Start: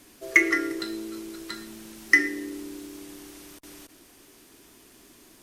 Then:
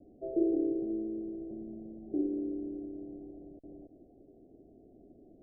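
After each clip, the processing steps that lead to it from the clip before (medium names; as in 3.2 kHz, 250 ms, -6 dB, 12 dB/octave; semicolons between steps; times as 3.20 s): steep low-pass 730 Hz 96 dB/octave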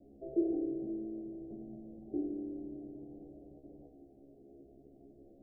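feedback comb 69 Hz, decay 0.3 s, harmonics all, mix 100%; trim +7.5 dB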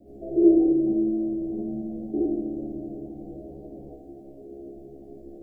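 gated-style reverb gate 100 ms rising, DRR -5.5 dB; trim +7 dB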